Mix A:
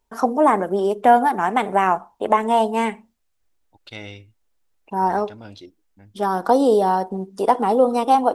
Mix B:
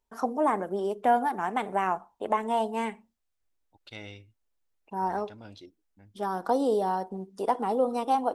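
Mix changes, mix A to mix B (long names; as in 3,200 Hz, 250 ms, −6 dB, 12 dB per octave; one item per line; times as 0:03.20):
first voice −9.5 dB
second voice −7.0 dB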